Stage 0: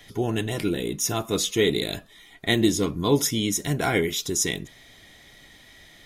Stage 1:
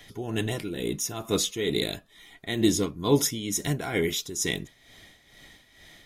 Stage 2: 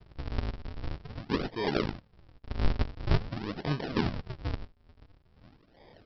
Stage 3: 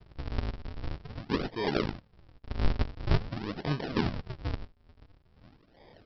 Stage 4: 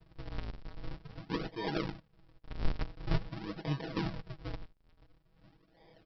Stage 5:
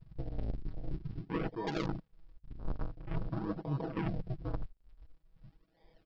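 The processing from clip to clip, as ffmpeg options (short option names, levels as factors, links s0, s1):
-af "tremolo=f=2.2:d=0.67"
-filter_complex "[0:a]asplit=2[s0][s1];[s1]adelay=105,volume=0.0631,highshelf=f=4000:g=-2.36[s2];[s0][s2]amix=inputs=2:normalize=0,aresample=11025,acrusher=samples=38:mix=1:aa=0.000001:lfo=1:lforange=60.8:lforate=0.47,aresample=44100,volume=0.708"
-af anull
-af "aecho=1:1:6.2:0.81,volume=0.422"
-af "afwtdn=0.00562,areverse,acompressor=threshold=0.00891:ratio=10,areverse,volume=2.99"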